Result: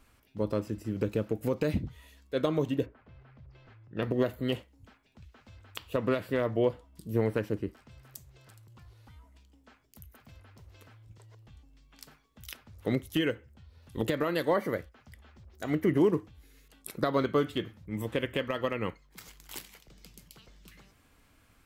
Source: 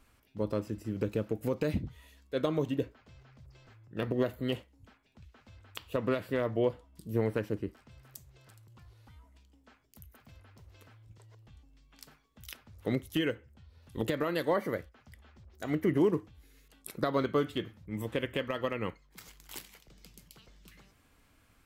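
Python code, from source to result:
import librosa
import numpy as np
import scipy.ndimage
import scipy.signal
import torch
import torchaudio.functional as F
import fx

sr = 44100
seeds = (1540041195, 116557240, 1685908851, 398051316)

y = fx.lowpass(x, sr, hz=fx.line((2.85, 1700.0), (4.01, 4500.0)), slope=12, at=(2.85, 4.01), fade=0.02)
y = y * 10.0 ** (2.0 / 20.0)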